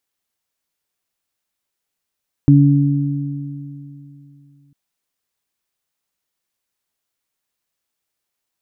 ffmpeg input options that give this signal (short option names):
-f lavfi -i "aevalsrc='0.447*pow(10,-3*t/3.03)*sin(2*PI*142*t)+0.355*pow(10,-3*t/2.77)*sin(2*PI*284*t)':d=2.25:s=44100"